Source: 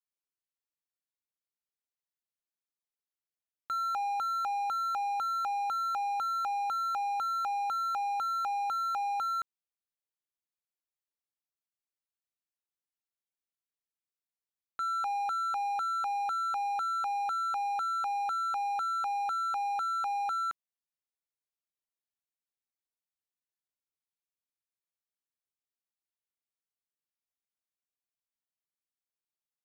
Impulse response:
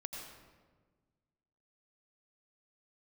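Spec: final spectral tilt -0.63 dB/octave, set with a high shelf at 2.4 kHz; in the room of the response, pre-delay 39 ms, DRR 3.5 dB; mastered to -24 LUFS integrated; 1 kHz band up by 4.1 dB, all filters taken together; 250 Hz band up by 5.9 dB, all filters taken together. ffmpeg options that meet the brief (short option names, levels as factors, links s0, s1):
-filter_complex "[0:a]equalizer=f=250:t=o:g=7.5,equalizer=f=1000:t=o:g=4.5,highshelf=f=2400:g=5,asplit=2[s0][s1];[1:a]atrim=start_sample=2205,adelay=39[s2];[s1][s2]afir=irnorm=-1:irlink=0,volume=0.794[s3];[s0][s3]amix=inputs=2:normalize=0,volume=1.78"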